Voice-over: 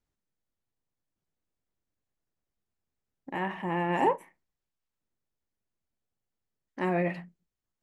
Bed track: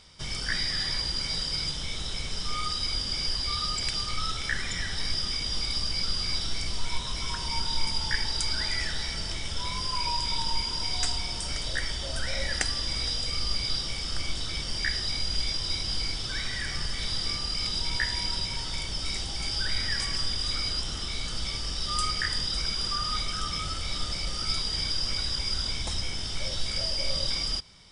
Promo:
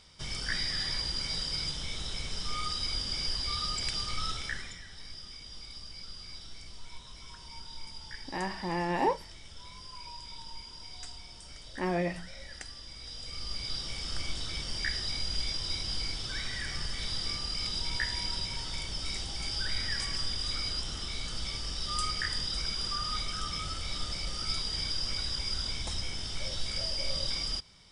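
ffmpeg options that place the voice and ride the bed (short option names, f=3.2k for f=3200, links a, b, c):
-filter_complex "[0:a]adelay=5000,volume=-2.5dB[a];[1:a]volume=8.5dB,afade=t=out:st=4.31:d=0.49:silence=0.237137,afade=t=in:st=13:d=1.1:silence=0.251189[b];[a][b]amix=inputs=2:normalize=0"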